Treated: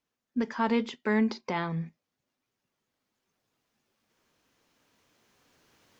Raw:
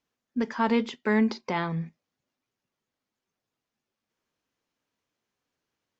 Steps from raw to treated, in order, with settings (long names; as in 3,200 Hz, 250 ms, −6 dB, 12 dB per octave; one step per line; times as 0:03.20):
camcorder AGC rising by 5.1 dB per second
level −2.5 dB